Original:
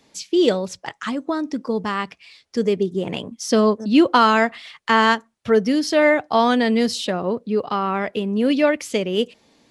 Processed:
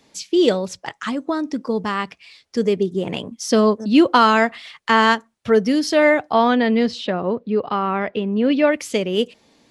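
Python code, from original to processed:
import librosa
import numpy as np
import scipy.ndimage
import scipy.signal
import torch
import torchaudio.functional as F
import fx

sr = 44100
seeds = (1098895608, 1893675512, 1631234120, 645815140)

y = fx.lowpass(x, sr, hz=3400.0, slope=12, at=(6.31, 8.72))
y = F.gain(torch.from_numpy(y), 1.0).numpy()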